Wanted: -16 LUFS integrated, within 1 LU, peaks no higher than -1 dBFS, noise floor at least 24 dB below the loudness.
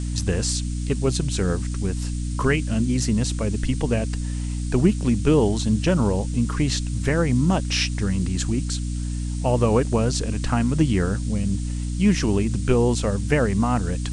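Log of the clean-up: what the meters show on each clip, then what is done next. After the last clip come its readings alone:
hum 60 Hz; harmonics up to 300 Hz; hum level -24 dBFS; noise floor -27 dBFS; noise floor target -47 dBFS; loudness -22.5 LUFS; peak -5.0 dBFS; loudness target -16.0 LUFS
-> de-hum 60 Hz, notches 5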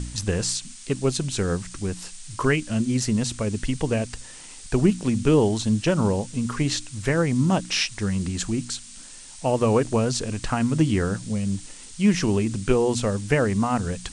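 hum none; noise floor -43 dBFS; noise floor target -48 dBFS
-> noise print and reduce 6 dB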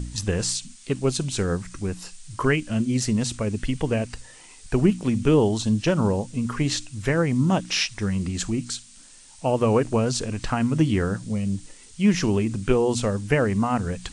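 noise floor -48 dBFS; loudness -24.0 LUFS; peak -6.0 dBFS; loudness target -16.0 LUFS
-> gain +8 dB; limiter -1 dBFS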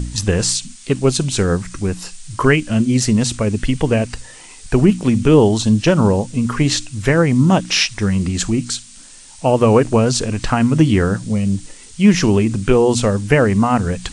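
loudness -16.0 LUFS; peak -1.0 dBFS; noise floor -40 dBFS

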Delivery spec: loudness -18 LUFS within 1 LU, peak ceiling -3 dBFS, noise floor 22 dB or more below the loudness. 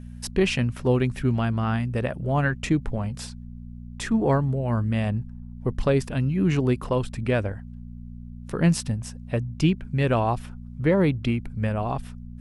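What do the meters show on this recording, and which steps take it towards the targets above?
hum 60 Hz; harmonics up to 240 Hz; hum level -39 dBFS; loudness -25.0 LUFS; peak -8.0 dBFS; loudness target -18.0 LUFS
-> de-hum 60 Hz, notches 4; gain +7 dB; limiter -3 dBFS

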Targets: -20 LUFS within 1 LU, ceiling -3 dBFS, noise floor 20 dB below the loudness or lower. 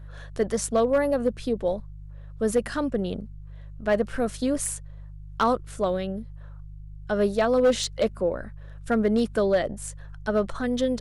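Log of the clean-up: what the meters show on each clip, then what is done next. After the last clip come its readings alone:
clipped 0.4%; flat tops at -14.5 dBFS; hum 50 Hz; harmonics up to 150 Hz; hum level -38 dBFS; loudness -26.0 LUFS; peak -14.5 dBFS; loudness target -20.0 LUFS
-> clip repair -14.5 dBFS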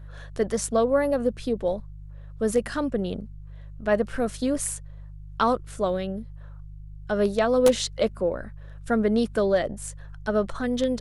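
clipped 0.0%; hum 50 Hz; harmonics up to 150 Hz; hum level -38 dBFS
-> de-hum 50 Hz, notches 3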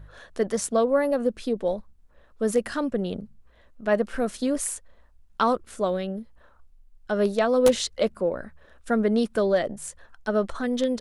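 hum none; loudness -25.5 LUFS; peak -5.5 dBFS; loudness target -20.0 LUFS
-> gain +5.5 dB; limiter -3 dBFS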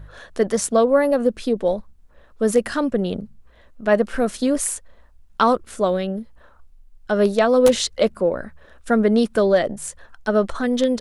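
loudness -20.0 LUFS; peak -3.0 dBFS; noise floor -51 dBFS

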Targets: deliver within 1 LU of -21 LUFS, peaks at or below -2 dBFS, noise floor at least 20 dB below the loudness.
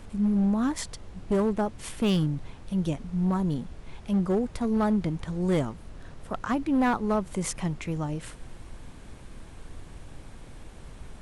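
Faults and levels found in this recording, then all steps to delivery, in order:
clipped 1.4%; flat tops at -19.0 dBFS; noise floor -46 dBFS; noise floor target -48 dBFS; loudness -28.0 LUFS; peak -19.0 dBFS; loudness target -21.0 LUFS
-> clip repair -19 dBFS; noise print and reduce 6 dB; gain +7 dB

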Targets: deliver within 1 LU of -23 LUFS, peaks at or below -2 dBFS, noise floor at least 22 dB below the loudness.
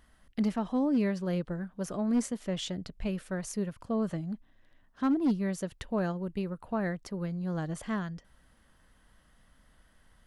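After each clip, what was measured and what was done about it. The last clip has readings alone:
clipped 0.4%; flat tops at -21.5 dBFS; loudness -32.5 LUFS; peak -21.5 dBFS; loudness target -23.0 LUFS
-> clip repair -21.5 dBFS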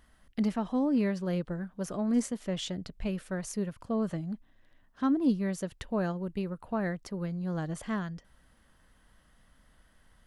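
clipped 0.0%; loudness -32.5 LUFS; peak -17.5 dBFS; loudness target -23.0 LUFS
-> gain +9.5 dB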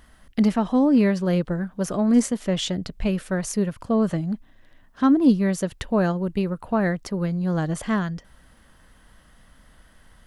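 loudness -23.0 LUFS; peak -8.0 dBFS; noise floor -55 dBFS

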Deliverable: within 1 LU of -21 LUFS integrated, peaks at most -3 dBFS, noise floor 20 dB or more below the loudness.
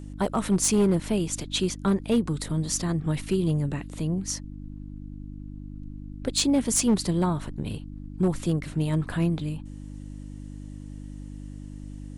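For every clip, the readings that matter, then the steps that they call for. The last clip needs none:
clipped 0.5%; flat tops at -15.5 dBFS; hum 50 Hz; harmonics up to 300 Hz; hum level -36 dBFS; loudness -26.0 LUFS; peak -15.5 dBFS; loudness target -21.0 LUFS
-> clip repair -15.5 dBFS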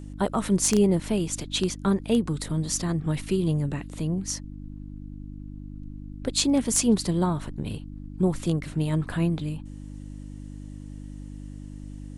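clipped 0.0%; hum 50 Hz; harmonics up to 300 Hz; hum level -36 dBFS
-> de-hum 50 Hz, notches 6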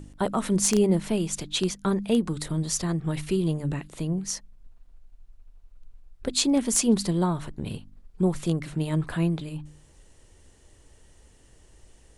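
hum none; loudness -26.5 LUFS; peak -6.5 dBFS; loudness target -21.0 LUFS
-> gain +5.5 dB; limiter -3 dBFS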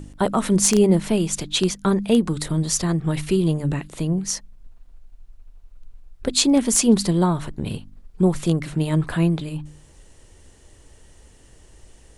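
loudness -21.0 LUFS; peak -3.0 dBFS; noise floor -51 dBFS

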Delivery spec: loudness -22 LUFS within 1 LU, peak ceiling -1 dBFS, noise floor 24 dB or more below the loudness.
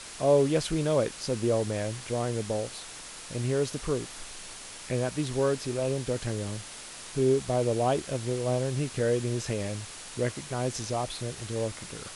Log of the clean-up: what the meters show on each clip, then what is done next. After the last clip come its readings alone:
noise floor -44 dBFS; noise floor target -54 dBFS; loudness -29.5 LUFS; peak -12.0 dBFS; loudness target -22.0 LUFS
-> denoiser 10 dB, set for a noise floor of -44 dBFS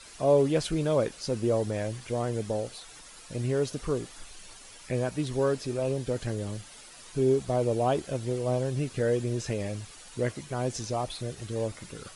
noise floor -49 dBFS; noise floor target -54 dBFS
-> denoiser 6 dB, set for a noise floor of -49 dBFS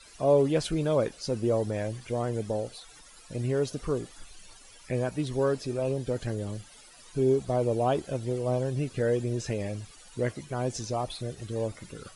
noise floor -52 dBFS; noise floor target -54 dBFS
-> denoiser 6 dB, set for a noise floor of -52 dBFS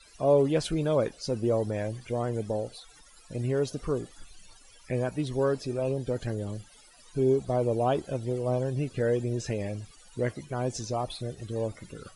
noise floor -55 dBFS; loudness -29.5 LUFS; peak -12.5 dBFS; loudness target -22.0 LUFS
-> gain +7.5 dB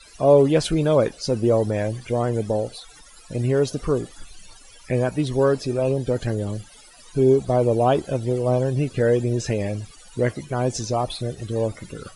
loudness -22.0 LUFS; peak -5.0 dBFS; noise floor -48 dBFS

